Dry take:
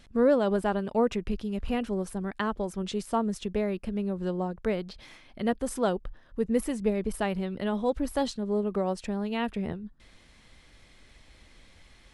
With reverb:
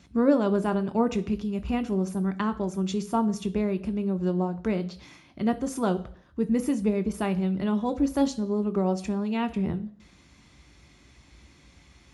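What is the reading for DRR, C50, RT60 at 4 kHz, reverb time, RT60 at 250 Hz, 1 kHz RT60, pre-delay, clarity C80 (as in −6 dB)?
8.5 dB, 17.0 dB, 0.65 s, 0.55 s, 0.55 s, 0.55 s, 3 ms, 20.5 dB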